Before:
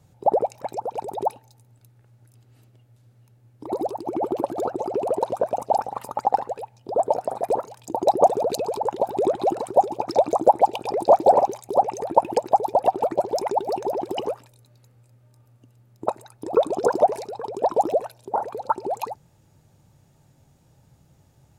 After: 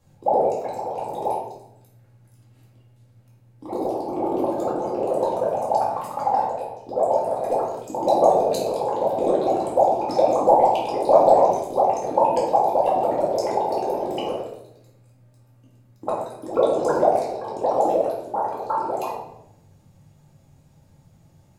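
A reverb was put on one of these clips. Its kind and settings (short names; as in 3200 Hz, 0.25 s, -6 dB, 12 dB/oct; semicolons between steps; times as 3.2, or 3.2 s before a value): shoebox room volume 230 m³, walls mixed, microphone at 2.2 m; gain -6 dB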